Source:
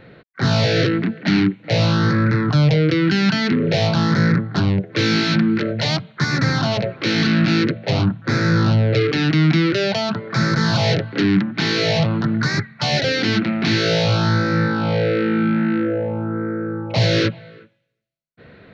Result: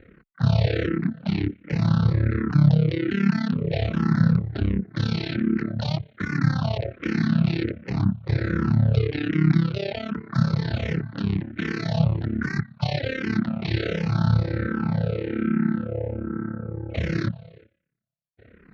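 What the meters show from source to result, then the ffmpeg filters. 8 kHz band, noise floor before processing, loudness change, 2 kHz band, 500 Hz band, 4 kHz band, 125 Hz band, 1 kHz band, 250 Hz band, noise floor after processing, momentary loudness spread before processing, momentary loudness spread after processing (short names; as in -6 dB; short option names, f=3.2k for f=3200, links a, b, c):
n/a, -49 dBFS, -6.0 dB, -10.5 dB, -9.5 dB, -14.5 dB, -3.0 dB, -10.5 dB, -5.5 dB, -57 dBFS, 5 LU, 8 LU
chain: -filter_complex "[0:a]bass=f=250:g=8,treble=f=4k:g=-9,tremolo=f=34:d=0.889,asplit=2[a][b];[b]afreqshift=-1.3[c];[a][c]amix=inputs=2:normalize=1,volume=-3.5dB"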